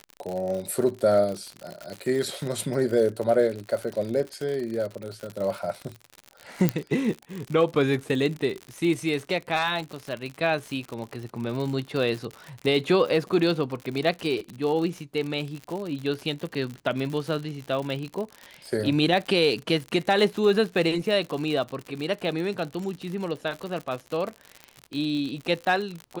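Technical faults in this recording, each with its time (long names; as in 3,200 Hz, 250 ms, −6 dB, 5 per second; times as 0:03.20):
surface crackle 79 per second −30 dBFS
0:06.69: click −7 dBFS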